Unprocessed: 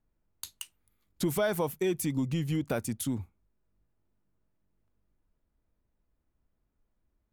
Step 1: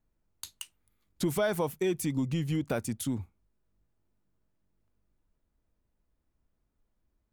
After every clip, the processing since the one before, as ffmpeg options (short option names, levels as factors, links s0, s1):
-af "equalizer=f=13000:t=o:w=0.5:g=-4"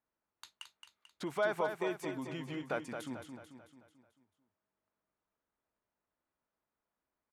-filter_complex "[0:a]bandpass=f=1200:t=q:w=0.83:csg=0,asplit=2[s0][s1];[s1]aecho=0:1:220|440|660|880|1100|1320:0.447|0.223|0.112|0.0558|0.0279|0.014[s2];[s0][s2]amix=inputs=2:normalize=0"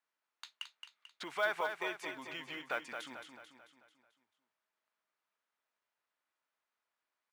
-af "bandpass=f=2500:t=q:w=0.73:csg=0,acrusher=bits=7:mode=log:mix=0:aa=0.000001,volume=1.88"